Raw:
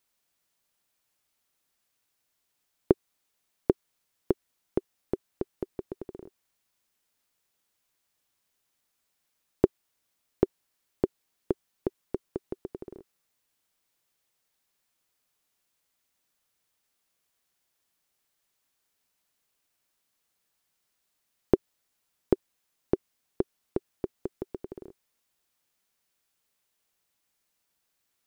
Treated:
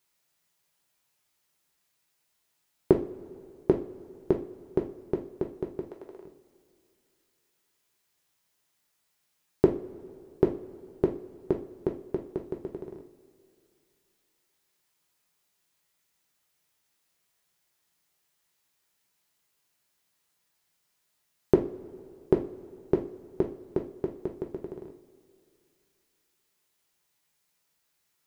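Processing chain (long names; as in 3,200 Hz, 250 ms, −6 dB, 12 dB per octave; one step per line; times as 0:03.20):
0:05.84–0:06.25: high-pass filter 520 Hz 12 dB per octave
coupled-rooms reverb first 0.33 s, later 2.7 s, from −21 dB, DRR 1 dB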